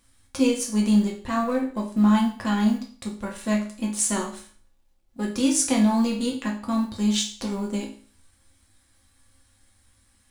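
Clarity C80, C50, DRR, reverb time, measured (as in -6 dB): 13.0 dB, 8.5 dB, -1.5 dB, 0.45 s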